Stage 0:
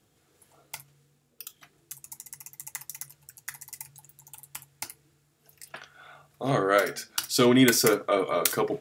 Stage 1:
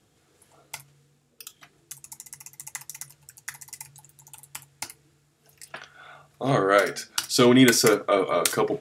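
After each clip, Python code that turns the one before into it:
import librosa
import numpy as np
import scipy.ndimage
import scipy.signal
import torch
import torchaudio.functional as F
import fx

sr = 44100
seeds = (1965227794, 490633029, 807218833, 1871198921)

y = scipy.signal.sosfilt(scipy.signal.butter(2, 11000.0, 'lowpass', fs=sr, output='sos'), x)
y = y * 10.0 ** (3.0 / 20.0)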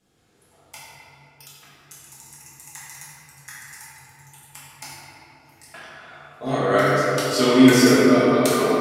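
y = fx.room_shoebox(x, sr, seeds[0], volume_m3=190.0, walls='hard', distance_m=1.4)
y = y * 10.0 ** (-7.0 / 20.0)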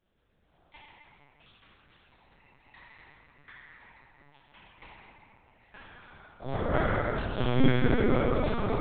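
y = fx.lpc_vocoder(x, sr, seeds[1], excitation='pitch_kept', order=8)
y = y * 10.0 ** (-8.5 / 20.0)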